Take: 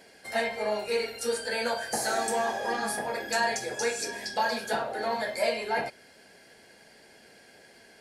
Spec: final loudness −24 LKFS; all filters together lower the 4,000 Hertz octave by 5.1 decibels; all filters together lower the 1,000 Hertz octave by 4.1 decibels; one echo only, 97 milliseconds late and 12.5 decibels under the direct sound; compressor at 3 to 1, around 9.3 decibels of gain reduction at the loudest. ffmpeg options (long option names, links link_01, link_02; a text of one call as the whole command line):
ffmpeg -i in.wav -af "equalizer=frequency=1000:width_type=o:gain=-5.5,equalizer=frequency=4000:width_type=o:gain=-6,acompressor=threshold=-37dB:ratio=3,aecho=1:1:97:0.237,volume=14.5dB" out.wav